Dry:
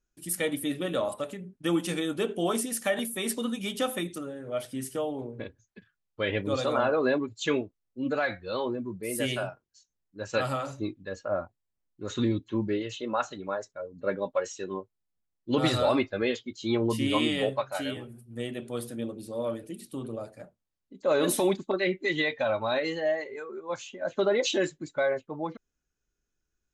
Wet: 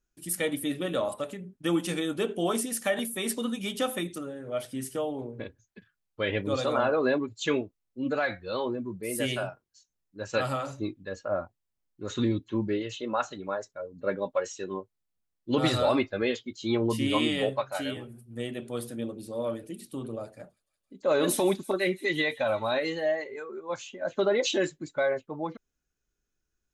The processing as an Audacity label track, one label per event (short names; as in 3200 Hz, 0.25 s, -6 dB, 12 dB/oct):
20.020000	23.060000	thin delay 0.168 s, feedback 72%, high-pass 3800 Hz, level -17.5 dB